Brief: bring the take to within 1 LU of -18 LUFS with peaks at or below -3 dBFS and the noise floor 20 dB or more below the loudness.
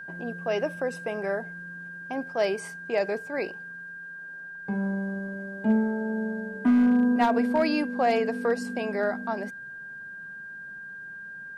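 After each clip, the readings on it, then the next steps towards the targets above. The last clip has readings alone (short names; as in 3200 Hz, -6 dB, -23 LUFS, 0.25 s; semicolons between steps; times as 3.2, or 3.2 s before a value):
clipped 0.3%; flat tops at -15.5 dBFS; steady tone 1600 Hz; tone level -38 dBFS; loudness -27.0 LUFS; peak -15.5 dBFS; loudness target -18.0 LUFS
-> clip repair -15.5 dBFS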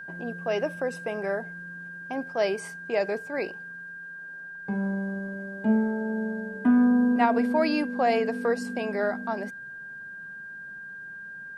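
clipped 0.0%; steady tone 1600 Hz; tone level -38 dBFS
-> notch 1600 Hz, Q 30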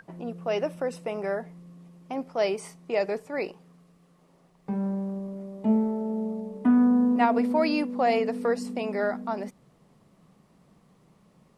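steady tone none; loudness -27.0 LUFS; peak -9.5 dBFS; loudness target -18.0 LUFS
-> gain +9 dB; limiter -3 dBFS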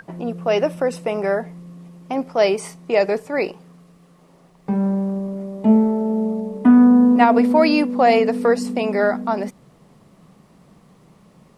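loudness -18.0 LUFS; peak -3.0 dBFS; noise floor -53 dBFS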